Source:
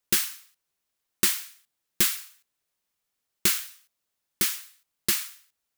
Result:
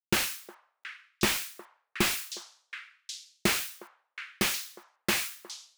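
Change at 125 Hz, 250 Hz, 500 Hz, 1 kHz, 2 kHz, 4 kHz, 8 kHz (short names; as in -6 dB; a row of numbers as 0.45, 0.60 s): +5.5, +5.5, +6.5, +6.5, +3.0, -1.0, -5.5 dB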